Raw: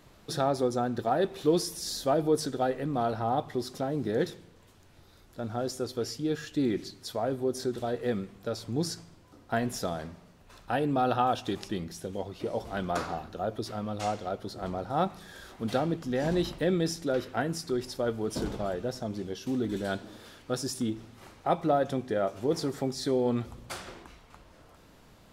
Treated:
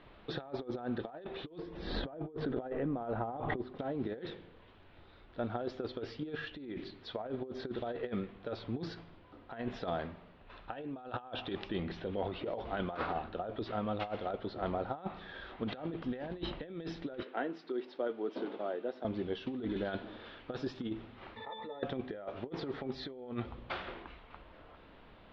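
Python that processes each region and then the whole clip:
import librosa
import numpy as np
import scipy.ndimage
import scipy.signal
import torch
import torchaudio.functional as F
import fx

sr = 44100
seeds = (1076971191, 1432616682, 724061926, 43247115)

y = fx.chain(x, sr, fx.spacing_loss(db_at_10k=38),
    fx.pre_swell(db_per_s=56.0), at=(1.58, 3.79))
y = fx.chain(y, sr, fx.lowpass(hz=5000.0, slope=12),
    fx.transient(attack_db=-3, sustain_db=7), at=(11.76, 12.4))
y = fx.chain(y, sr, fx.quant_companded(bits=8),
    fx.ladder_highpass(hz=230.0, resonance_pct=30), at=(17.23, 19.05))
y = fx.chain(y, sr, fx.tilt_eq(slope=4.5),
    fx.octave_resonator(note='A', decay_s=0.16),
    fx.pre_swell(db_per_s=25.0), at=(21.36, 21.83))
y = scipy.signal.sosfilt(scipy.signal.butter(6, 3600.0, 'lowpass', fs=sr, output='sos'), y)
y = fx.peak_eq(y, sr, hz=130.0, db=-6.5, octaves=1.6)
y = fx.over_compress(y, sr, threshold_db=-34.0, ratio=-0.5)
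y = y * librosa.db_to_amplitude(-2.5)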